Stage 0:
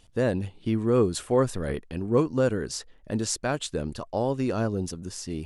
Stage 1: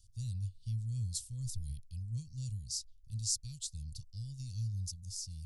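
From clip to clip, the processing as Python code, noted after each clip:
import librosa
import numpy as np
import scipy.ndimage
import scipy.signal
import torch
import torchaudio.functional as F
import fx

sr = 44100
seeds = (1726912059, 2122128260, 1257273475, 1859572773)

y = scipy.signal.sosfilt(scipy.signal.ellip(3, 1.0, 50, [110.0, 4800.0], 'bandstop', fs=sr, output='sos'), x)
y = y * librosa.db_to_amplitude(-3.0)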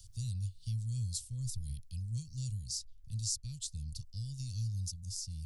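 y = fx.band_squash(x, sr, depth_pct=40)
y = y * librosa.db_to_amplitude(1.0)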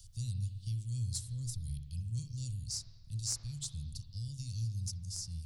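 y = fx.diode_clip(x, sr, knee_db=-19.0)
y = fx.rev_spring(y, sr, rt60_s=1.2, pass_ms=(35, 42, 48), chirp_ms=40, drr_db=6.0)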